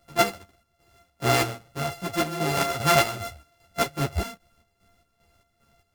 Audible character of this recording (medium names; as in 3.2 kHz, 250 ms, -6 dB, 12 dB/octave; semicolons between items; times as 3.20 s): a buzz of ramps at a fixed pitch in blocks of 64 samples; chopped level 2.5 Hz, depth 60%, duty 55%; a shimmering, thickened sound